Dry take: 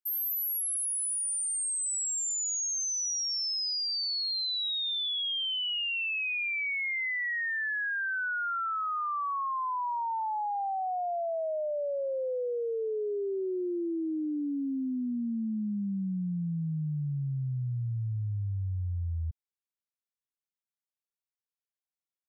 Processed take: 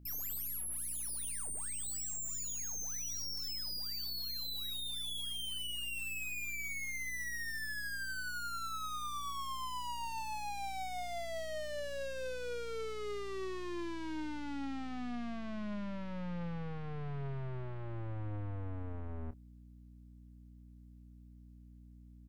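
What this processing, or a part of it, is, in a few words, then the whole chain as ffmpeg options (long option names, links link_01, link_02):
valve amplifier with mains hum: -filter_complex "[0:a]aeval=exprs='(tanh(355*val(0)+0.7)-tanh(0.7))/355':channel_layout=same,aeval=exprs='val(0)+0.000631*(sin(2*PI*60*n/s)+sin(2*PI*2*60*n/s)/2+sin(2*PI*3*60*n/s)/3+sin(2*PI*4*60*n/s)/4+sin(2*PI*5*60*n/s)/5)':channel_layout=same,asplit=2[link_01][link_02];[link_02]adelay=29,volume=-13dB[link_03];[link_01][link_03]amix=inputs=2:normalize=0,volume=10dB"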